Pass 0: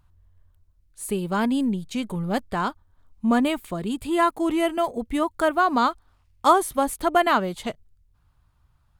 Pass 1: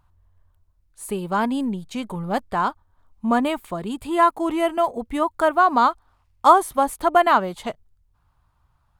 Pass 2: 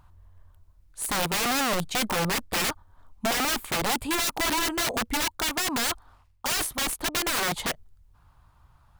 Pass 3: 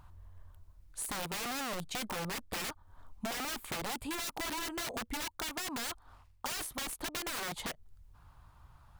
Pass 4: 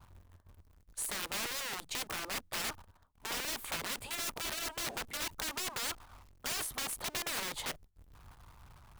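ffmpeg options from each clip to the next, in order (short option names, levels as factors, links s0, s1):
-af "equalizer=f=920:t=o:w=1.4:g=7.5,volume=0.794"
-af "areverse,acompressor=threshold=0.0562:ratio=5,areverse,aeval=exprs='(mod(23.7*val(0)+1,2)-1)/23.7':c=same,volume=2.11"
-af "acompressor=threshold=0.0141:ratio=6"
-af "aeval=exprs='val(0)+0.5*0.00299*sgn(val(0))':c=same,afftfilt=real='re*lt(hypot(re,im),0.0447)':imag='im*lt(hypot(re,im),0.0447)':win_size=1024:overlap=0.75,agate=range=0.0224:threshold=0.00447:ratio=3:detection=peak,volume=1.19"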